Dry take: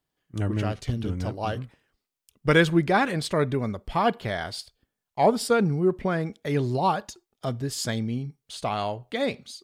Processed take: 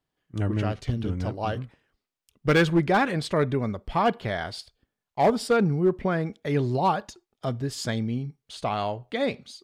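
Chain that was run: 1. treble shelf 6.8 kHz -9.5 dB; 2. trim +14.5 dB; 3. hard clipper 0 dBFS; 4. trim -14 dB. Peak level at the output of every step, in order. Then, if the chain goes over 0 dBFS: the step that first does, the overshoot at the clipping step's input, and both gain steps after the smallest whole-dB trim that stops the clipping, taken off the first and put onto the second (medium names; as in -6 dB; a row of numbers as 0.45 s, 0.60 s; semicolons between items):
-7.5 dBFS, +7.0 dBFS, 0.0 dBFS, -14.0 dBFS; step 2, 7.0 dB; step 2 +7.5 dB, step 4 -7 dB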